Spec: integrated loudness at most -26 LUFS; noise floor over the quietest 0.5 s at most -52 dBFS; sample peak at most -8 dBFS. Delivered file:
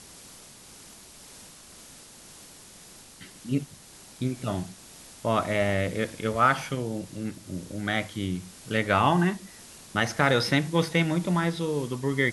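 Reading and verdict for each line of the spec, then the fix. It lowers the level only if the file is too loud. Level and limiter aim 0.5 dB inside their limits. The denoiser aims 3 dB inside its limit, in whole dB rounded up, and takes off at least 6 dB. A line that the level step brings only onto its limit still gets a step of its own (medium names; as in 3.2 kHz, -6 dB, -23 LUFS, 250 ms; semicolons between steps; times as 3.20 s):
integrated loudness -27.0 LUFS: pass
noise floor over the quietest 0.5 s -49 dBFS: fail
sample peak -7.5 dBFS: fail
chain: noise reduction 6 dB, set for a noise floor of -49 dBFS; peak limiter -8.5 dBFS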